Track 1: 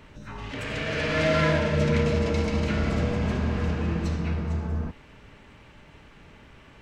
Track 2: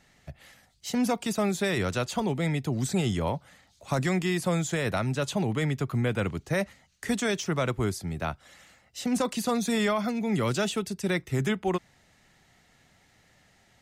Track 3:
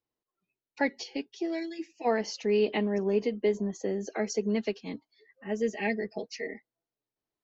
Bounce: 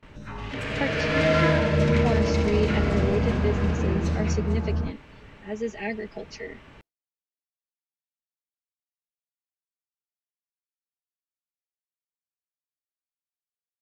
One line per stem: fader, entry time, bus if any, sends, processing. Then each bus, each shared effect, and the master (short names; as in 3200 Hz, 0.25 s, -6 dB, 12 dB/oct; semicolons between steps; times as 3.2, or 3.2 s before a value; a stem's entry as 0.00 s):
+2.0 dB, 0.00 s, no send, high shelf 5900 Hz -6 dB
off
-1.0 dB, 0.00 s, no send, dry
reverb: off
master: gate with hold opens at -41 dBFS